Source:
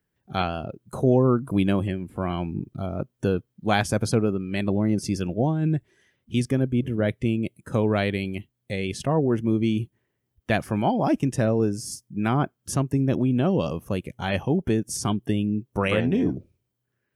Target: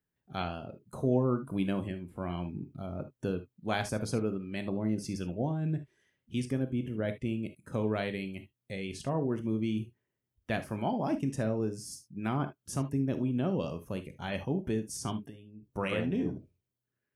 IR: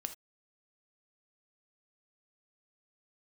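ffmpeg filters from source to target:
-filter_complex "[0:a]asettb=1/sr,asplit=3[a][b][c];[a]atrim=end=15.194[d];[b]atrim=start=15.19:end=15.63,asetpts=PTS-STARTPTS,afade=t=in:d=0.004:c=qsin,afade=t=out:st=0.436:d=0.004:c=qsin,acompressor=threshold=-40dB:ratio=3[e];[c]atrim=start=15.626[f];[d][e]acrossfade=d=0.004:c1=hsin:c2=qsin[g];[g][f]acrossfade=d=0.004:c1=qsin:c2=hsin[h];[1:a]atrim=start_sample=2205,atrim=end_sample=3528[i];[h][i]afir=irnorm=-1:irlink=0,volume=-7.5dB"

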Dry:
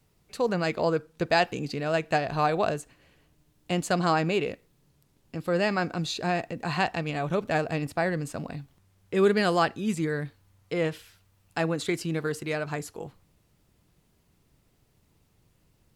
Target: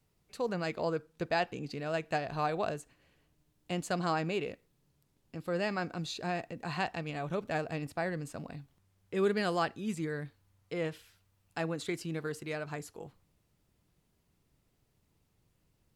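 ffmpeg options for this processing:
-filter_complex "[0:a]asettb=1/sr,asplit=3[a][b][c];[a]atrim=end=1.294[d];[b]atrim=start=1.29:end=1.71,asetpts=PTS-STARTPTS,afade=t=in:d=0.004:c=qsin,afade=t=out:st=0.416:d=0.004:c=qsin,highshelf=f=5.1k:g=-6.5[e];[c]atrim=start=1.706[f];[d][e]acrossfade=d=0.004:c1=hsin:c2=qsin[g];[g][f]acrossfade=d=0.004:c1=qsin:c2=hsin,volume=-7.5dB"

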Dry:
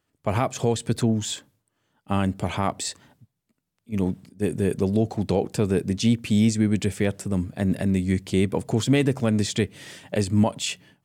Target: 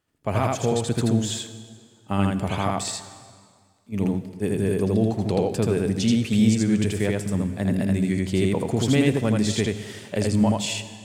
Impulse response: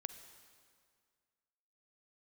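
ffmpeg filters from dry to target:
-filter_complex "[0:a]asplit=2[a][b];[1:a]atrim=start_sample=2205,adelay=81[c];[b][c]afir=irnorm=-1:irlink=0,volume=2dB[d];[a][d]amix=inputs=2:normalize=0,volume=-1.5dB"

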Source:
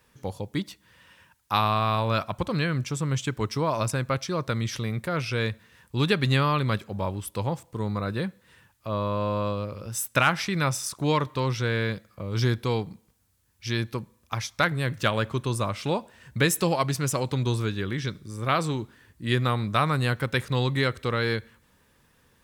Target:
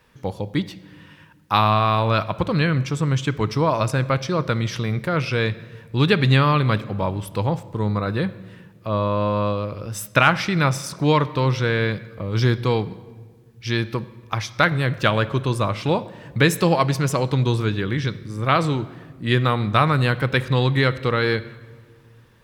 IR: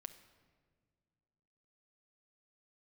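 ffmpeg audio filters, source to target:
-filter_complex "[0:a]asplit=2[a][b];[1:a]atrim=start_sample=2205,lowpass=5.4k[c];[b][c]afir=irnorm=-1:irlink=0,volume=7dB[d];[a][d]amix=inputs=2:normalize=0,volume=-1dB"

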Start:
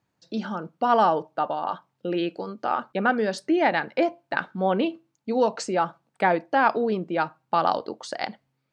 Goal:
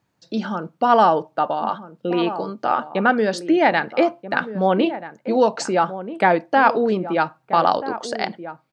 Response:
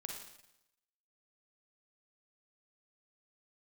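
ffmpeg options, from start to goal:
-filter_complex "[0:a]asplit=2[a][b];[b]adelay=1283,volume=-12dB,highshelf=f=4k:g=-28.9[c];[a][c]amix=inputs=2:normalize=0,volume=5dB"

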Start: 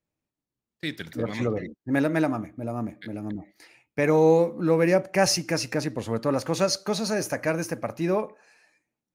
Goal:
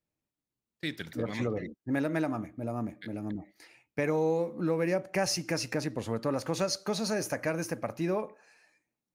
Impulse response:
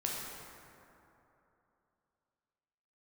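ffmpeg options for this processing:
-af "acompressor=threshold=-24dB:ratio=2.5,volume=-3dB"

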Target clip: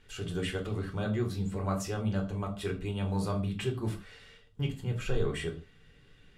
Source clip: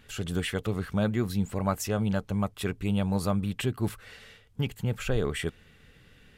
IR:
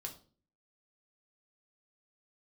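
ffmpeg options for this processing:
-filter_complex "[0:a]lowpass=9.8k[a];[1:a]atrim=start_sample=2205,afade=t=out:st=0.22:d=0.01,atrim=end_sample=10143[b];[a][b]afir=irnorm=-1:irlink=0,volume=-1.5dB"

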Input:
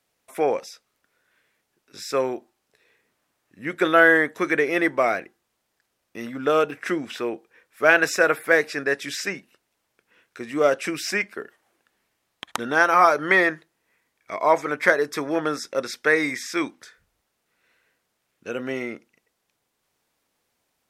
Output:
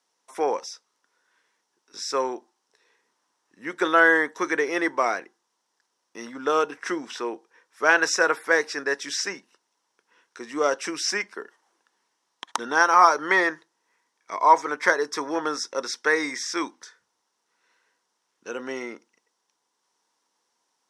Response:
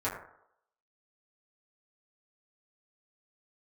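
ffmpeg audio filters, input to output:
-af "highpass=290,equalizer=f=620:t=q:w=4:g=-6,equalizer=f=960:t=q:w=4:g=9,equalizer=f=2.4k:t=q:w=4:g=-6,equalizer=f=5.7k:t=q:w=4:g=9,lowpass=f=10k:w=0.5412,lowpass=f=10k:w=1.3066,volume=-1.5dB"

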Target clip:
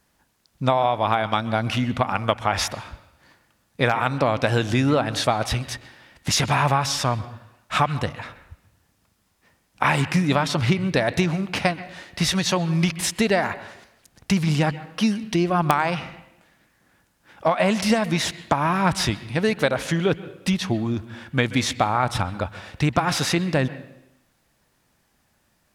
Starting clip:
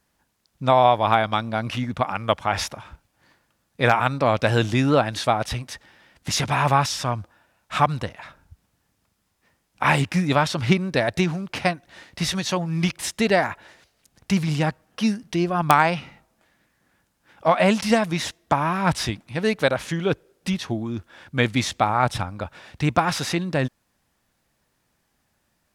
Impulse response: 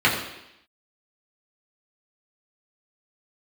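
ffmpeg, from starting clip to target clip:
-filter_complex "[0:a]acompressor=threshold=-20dB:ratio=6,asplit=2[a][b];[1:a]atrim=start_sample=2205,adelay=126[c];[b][c]afir=irnorm=-1:irlink=0,volume=-34.5dB[d];[a][d]amix=inputs=2:normalize=0,volume=4dB"

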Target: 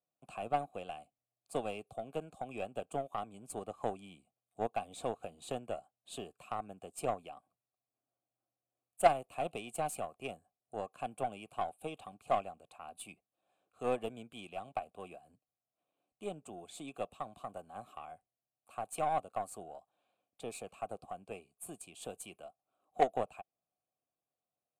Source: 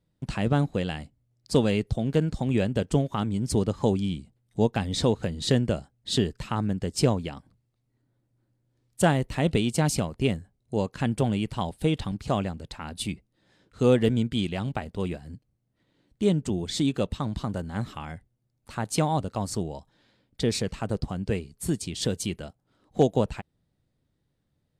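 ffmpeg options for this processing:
-filter_complex "[0:a]asplit=3[a][b][c];[a]bandpass=f=730:t=q:w=8,volume=0dB[d];[b]bandpass=f=1.09k:t=q:w=8,volume=-6dB[e];[c]bandpass=f=2.44k:t=q:w=8,volume=-9dB[f];[d][e][f]amix=inputs=3:normalize=0,bandreject=f=1.9k:w=30,acrossover=split=370|950[g][h][i];[i]aexciter=amount=12.3:drive=8:freq=7.9k[j];[g][h][j]amix=inputs=3:normalize=0,aeval=exprs='0.126*(cos(1*acos(clip(val(0)/0.126,-1,1)))-cos(1*PI/2))+0.0158*(cos(3*acos(clip(val(0)/0.126,-1,1)))-cos(3*PI/2))+0.01*(cos(4*acos(clip(val(0)/0.126,-1,1)))-cos(4*PI/2))+0.00794*(cos(6*acos(clip(val(0)/0.126,-1,1)))-cos(6*PI/2))+0.00282*(cos(7*acos(clip(val(0)/0.126,-1,1)))-cos(7*PI/2))':c=same,volume=6dB"

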